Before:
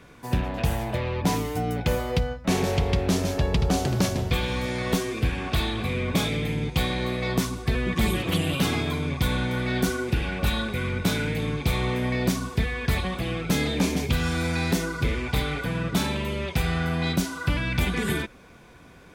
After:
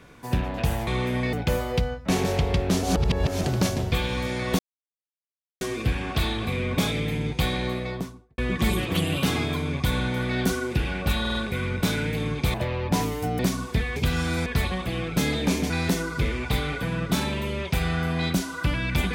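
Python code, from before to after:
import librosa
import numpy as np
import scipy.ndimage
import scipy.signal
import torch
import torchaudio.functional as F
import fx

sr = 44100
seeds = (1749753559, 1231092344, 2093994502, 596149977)

y = fx.studio_fade_out(x, sr, start_s=6.97, length_s=0.78)
y = fx.edit(y, sr, fx.swap(start_s=0.87, length_s=0.85, other_s=11.76, other_length_s=0.46),
    fx.reverse_span(start_s=3.22, length_s=0.61),
    fx.insert_silence(at_s=4.98, length_s=1.02),
    fx.stutter(start_s=10.57, slice_s=0.05, count=4),
    fx.move(start_s=14.03, length_s=0.5, to_s=12.79), tone=tone)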